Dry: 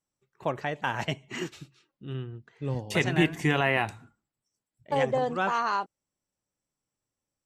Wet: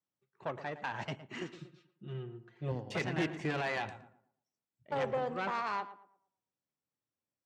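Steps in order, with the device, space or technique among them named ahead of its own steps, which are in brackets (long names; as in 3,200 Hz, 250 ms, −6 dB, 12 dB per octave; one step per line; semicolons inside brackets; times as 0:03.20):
high-frequency loss of the air 100 metres
rockabilly slapback (tube saturation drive 23 dB, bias 0.6; tape delay 114 ms, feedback 35%, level −11 dB, low-pass 1,500 Hz)
high-pass filter 100 Hz
0:01.58–0:02.72: comb filter 5.6 ms, depth 89%
level −3.5 dB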